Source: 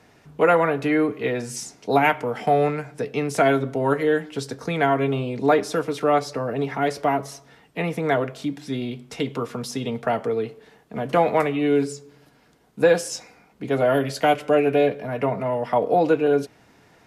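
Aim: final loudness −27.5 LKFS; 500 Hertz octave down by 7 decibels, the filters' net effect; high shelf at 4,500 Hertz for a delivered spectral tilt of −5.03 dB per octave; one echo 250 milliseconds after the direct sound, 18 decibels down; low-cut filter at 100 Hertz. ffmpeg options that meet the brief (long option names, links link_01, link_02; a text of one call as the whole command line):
ffmpeg -i in.wav -af "highpass=100,equalizer=frequency=500:width_type=o:gain=-8.5,highshelf=frequency=4500:gain=-8.5,aecho=1:1:250:0.126,volume=-0.5dB" out.wav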